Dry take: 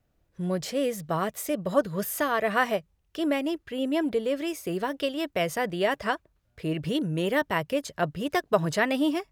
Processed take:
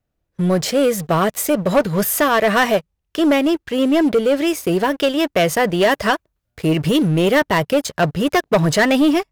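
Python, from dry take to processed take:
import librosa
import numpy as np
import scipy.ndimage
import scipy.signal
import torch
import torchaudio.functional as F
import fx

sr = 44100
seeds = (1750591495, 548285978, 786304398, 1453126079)

y = fx.high_shelf(x, sr, hz=8600.0, db=6.5, at=(5.82, 7.09))
y = fx.leveller(y, sr, passes=3)
y = F.gain(torch.from_numpy(y), 1.5).numpy()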